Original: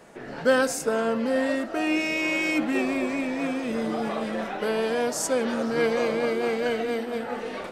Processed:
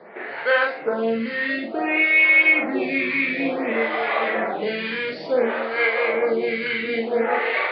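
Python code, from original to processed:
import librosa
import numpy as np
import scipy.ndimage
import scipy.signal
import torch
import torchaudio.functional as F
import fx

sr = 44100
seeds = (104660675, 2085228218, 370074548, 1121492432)

y = scipy.signal.sosfilt(scipy.signal.butter(16, 4600.0, 'lowpass', fs=sr, output='sos'), x)
y = fx.peak_eq(y, sr, hz=260.0, db=-6.5, octaves=0.41)
y = fx.rider(y, sr, range_db=5, speed_s=0.5)
y = scipy.signal.sosfilt(scipy.signal.butter(2, 160.0, 'highpass', fs=sr, output='sos'), y)
y = fx.peak_eq(y, sr, hz=2100.0, db=11.5, octaves=0.49)
y = fx.doubler(y, sr, ms=44.0, db=-2)
y = fx.stagger_phaser(y, sr, hz=0.56)
y = y * 10.0 ** (4.0 / 20.0)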